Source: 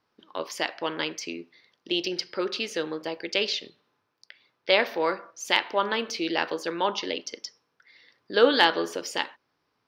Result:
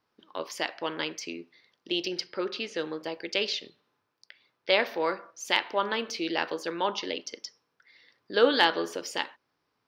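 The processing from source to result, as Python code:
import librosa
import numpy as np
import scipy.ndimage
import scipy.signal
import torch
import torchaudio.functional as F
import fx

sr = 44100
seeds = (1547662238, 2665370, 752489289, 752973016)

y = fx.air_absorb(x, sr, metres=81.0, at=(2.26, 2.77), fade=0.02)
y = F.gain(torch.from_numpy(y), -2.5).numpy()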